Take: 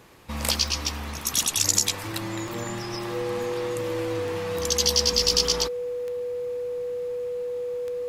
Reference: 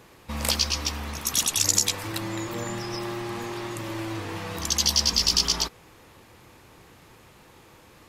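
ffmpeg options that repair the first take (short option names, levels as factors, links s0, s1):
-af "adeclick=t=4,bandreject=f=490:w=30"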